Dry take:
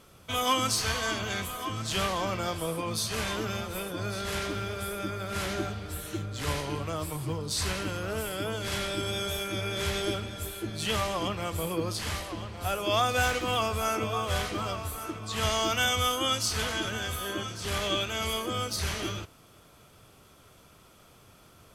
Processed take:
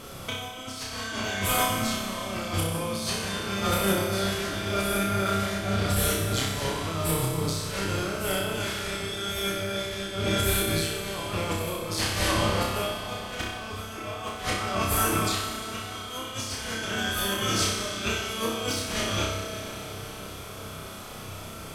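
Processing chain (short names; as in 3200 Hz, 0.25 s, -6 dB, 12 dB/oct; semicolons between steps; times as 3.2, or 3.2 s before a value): negative-ratio compressor -37 dBFS, ratio -0.5; flutter echo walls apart 5.3 m, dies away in 0.69 s; reverb RT60 5.3 s, pre-delay 36 ms, DRR 5 dB; gain +5.5 dB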